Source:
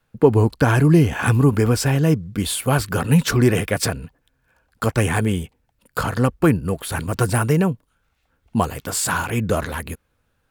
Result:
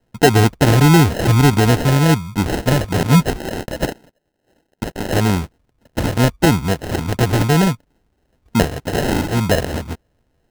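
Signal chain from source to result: 3.33–5.13 HPF 1100 Hz 12 dB/oct; in parallel at +0.5 dB: limiter -9.5 dBFS, peak gain reduction 8 dB; on the sum: sample-and-hold 38×; gain -2 dB

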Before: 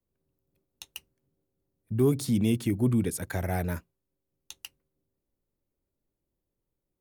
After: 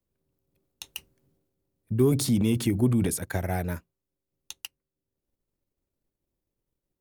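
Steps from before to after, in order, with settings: transient shaper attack +4 dB, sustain +8 dB, from 3.18 s sustain -3 dB, from 4.6 s sustain -8 dB

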